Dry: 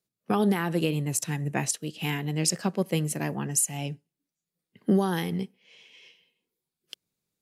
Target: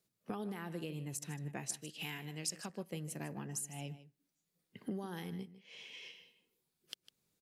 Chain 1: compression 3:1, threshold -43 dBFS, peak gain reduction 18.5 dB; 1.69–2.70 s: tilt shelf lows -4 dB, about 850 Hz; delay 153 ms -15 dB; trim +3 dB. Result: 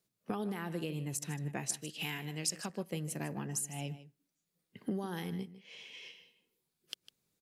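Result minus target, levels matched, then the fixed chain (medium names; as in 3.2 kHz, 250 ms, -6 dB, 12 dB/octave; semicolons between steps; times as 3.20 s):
compression: peak gain reduction -4.5 dB
compression 3:1, threshold -49.5 dBFS, peak gain reduction 22.5 dB; 1.69–2.70 s: tilt shelf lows -4 dB, about 850 Hz; delay 153 ms -15 dB; trim +3 dB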